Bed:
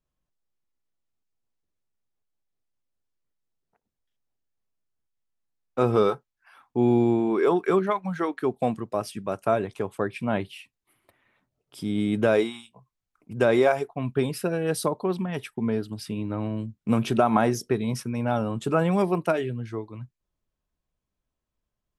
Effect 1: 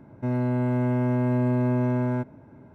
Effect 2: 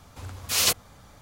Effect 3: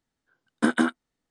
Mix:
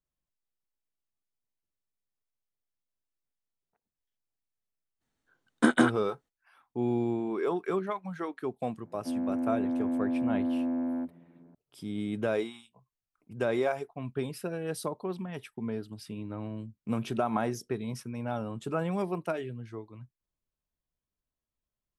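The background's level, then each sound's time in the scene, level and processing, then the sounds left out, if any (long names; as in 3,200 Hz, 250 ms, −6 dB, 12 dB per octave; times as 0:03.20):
bed −8.5 dB
0:05.00: mix in 3 −0.5 dB, fades 0.02 s + notch filter 5,000 Hz, Q 11
0:08.81: mix in 1 −4.5 dB + channel vocoder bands 32, saw 84.8 Hz
not used: 2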